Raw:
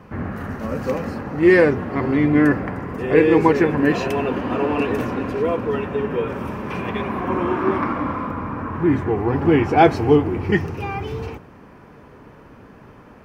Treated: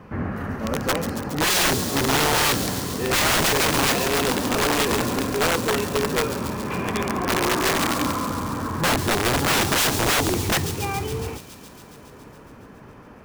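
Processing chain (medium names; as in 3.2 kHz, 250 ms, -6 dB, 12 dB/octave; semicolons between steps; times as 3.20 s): integer overflow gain 15 dB; feedback echo behind a high-pass 139 ms, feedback 77%, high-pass 4.3 kHz, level -6.5 dB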